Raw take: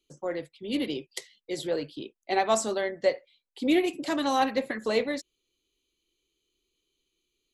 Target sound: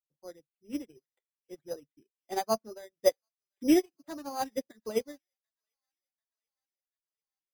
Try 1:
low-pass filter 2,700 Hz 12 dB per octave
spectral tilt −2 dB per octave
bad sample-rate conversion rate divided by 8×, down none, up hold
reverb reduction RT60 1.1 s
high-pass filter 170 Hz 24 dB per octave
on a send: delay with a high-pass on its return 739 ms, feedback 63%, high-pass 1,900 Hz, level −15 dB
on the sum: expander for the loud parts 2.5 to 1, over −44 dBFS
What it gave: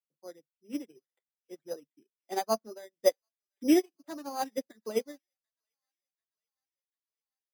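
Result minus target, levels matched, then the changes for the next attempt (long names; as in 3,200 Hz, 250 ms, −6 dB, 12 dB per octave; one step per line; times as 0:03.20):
125 Hz band −3.0 dB
remove: high-pass filter 170 Hz 24 dB per octave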